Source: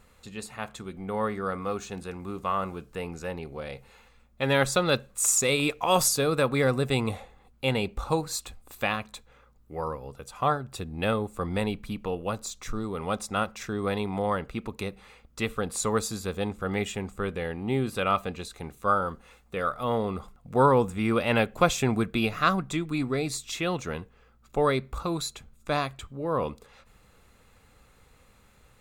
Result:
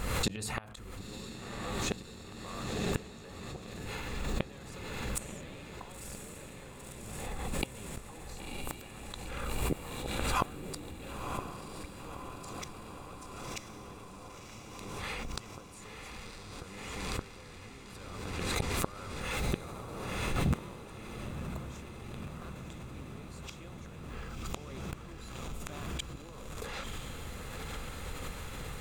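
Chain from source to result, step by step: octaver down 1 oct, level -1 dB; limiter -19 dBFS, peak gain reduction 11.5 dB; compressor 4:1, threshold -34 dBFS, peak gain reduction 9.5 dB; flipped gate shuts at -31 dBFS, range -32 dB; diffused feedback echo 1.003 s, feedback 75%, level -6 dB; backwards sustainer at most 28 dB/s; gain +13.5 dB

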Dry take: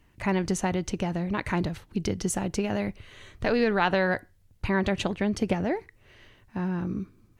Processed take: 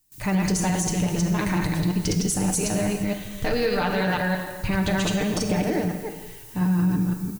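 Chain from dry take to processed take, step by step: reverse delay 0.174 s, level 0 dB; added noise blue -56 dBFS; comb 6.6 ms, depth 46%; gate with hold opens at -43 dBFS; tone controls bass +5 dB, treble +10 dB; non-linear reverb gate 0.48 s falling, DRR 5.5 dB; limiter -13.5 dBFS, peak gain reduction 7 dB; gain -1 dB

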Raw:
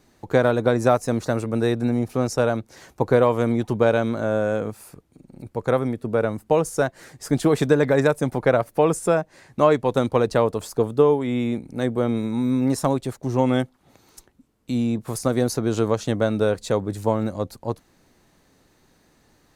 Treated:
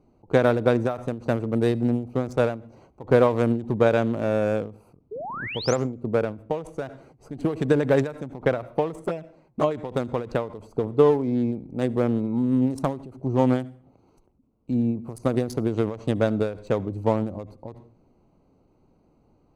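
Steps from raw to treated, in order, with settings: Wiener smoothing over 25 samples; 5.11–5.76 painted sound rise 390–7600 Hz -33 dBFS; 8.96–9.71 envelope flanger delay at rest 7.9 ms, full sweep at -14 dBFS; on a send at -22.5 dB: reverb RT60 0.40 s, pre-delay 64 ms; on the sum: ending taper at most 130 dB/s

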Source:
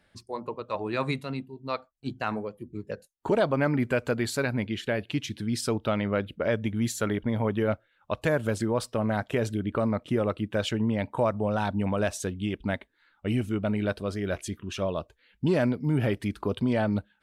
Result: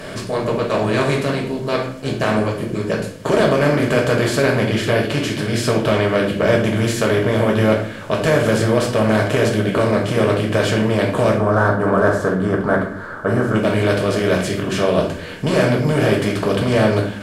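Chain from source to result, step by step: per-bin compression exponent 0.4; 11.38–13.55 resonant high shelf 1900 Hz -10 dB, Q 3; reverb RT60 0.50 s, pre-delay 4 ms, DRR -1.5 dB

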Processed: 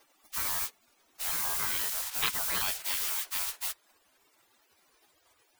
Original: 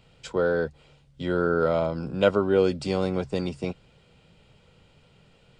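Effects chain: trilling pitch shifter +4.5 st, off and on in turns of 0.119 s; added noise blue -38 dBFS; spectral gate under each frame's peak -25 dB weak; gain +6 dB

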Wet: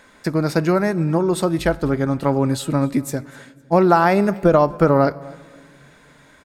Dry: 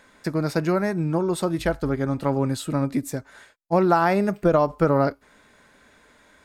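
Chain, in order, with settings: feedback echo 0.254 s, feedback 29%, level -23 dB; on a send at -22 dB: reverb RT60 1.8 s, pre-delay 18 ms; on the sum: gain +4.5 dB

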